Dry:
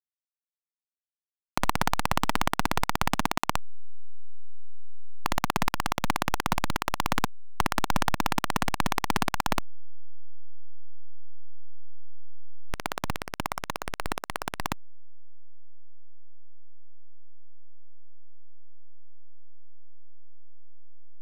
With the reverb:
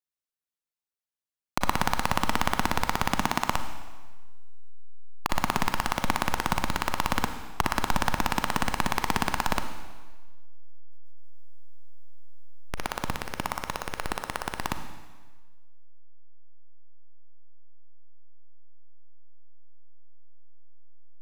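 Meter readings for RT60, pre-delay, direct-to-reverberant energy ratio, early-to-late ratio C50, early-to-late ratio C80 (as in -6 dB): 1.3 s, 34 ms, 7.5 dB, 8.5 dB, 10.0 dB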